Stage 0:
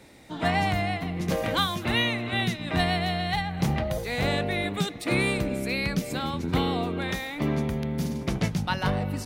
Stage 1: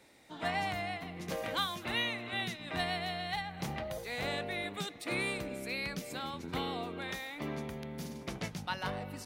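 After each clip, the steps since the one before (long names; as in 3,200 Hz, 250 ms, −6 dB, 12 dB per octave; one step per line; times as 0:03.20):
low-shelf EQ 270 Hz −10 dB
level −7.5 dB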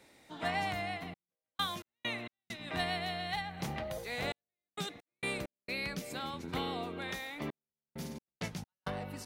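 gate pattern "xxxxx..x.x.xxx" 66 BPM −60 dB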